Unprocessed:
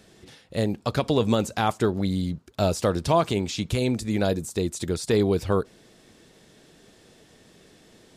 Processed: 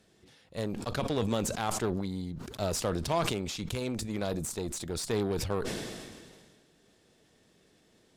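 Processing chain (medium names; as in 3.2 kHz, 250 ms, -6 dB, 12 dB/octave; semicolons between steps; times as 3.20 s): Chebyshev shaper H 3 -19 dB, 8 -26 dB, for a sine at -9.5 dBFS; decay stretcher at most 32 dB/s; trim -7.5 dB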